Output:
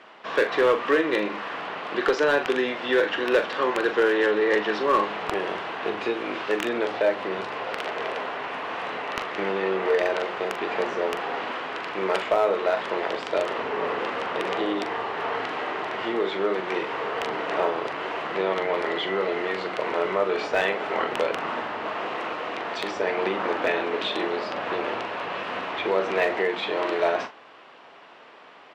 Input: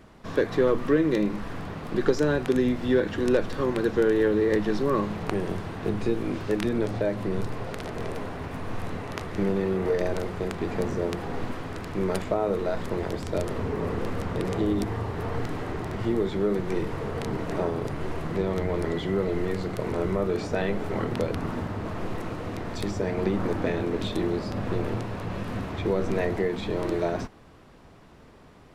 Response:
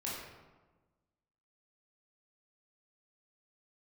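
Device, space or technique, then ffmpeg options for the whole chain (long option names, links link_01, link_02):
megaphone: -filter_complex "[0:a]highpass=650,lowpass=3400,equalizer=frequency=2900:width_type=o:width=0.45:gain=5,asoftclip=type=hard:threshold=-23dB,asplit=2[link_01][link_02];[link_02]adelay=42,volume=-10dB[link_03];[link_01][link_03]amix=inputs=2:normalize=0,asettb=1/sr,asplit=3[link_04][link_05][link_06];[link_04]atrim=end=4.134[link_07];[link_05]atrim=start=4.13:end=4.65,asetpts=PTS-STARTPTS,afade=type=in:duration=0.004:curve=qsin,afade=type=out:start_time=0.516:duration=0.004:curve=qsin,lowpass=8600[link_08];[link_06]atrim=start=4.646[link_09];[link_07][link_08]acrossfade=duration=0.004:curve1=hsin:curve2=qsin[link_10];[link_10][link_09]acrossfade=duration=0.004:curve1=qsin:curve2=hsin,volume=9dB"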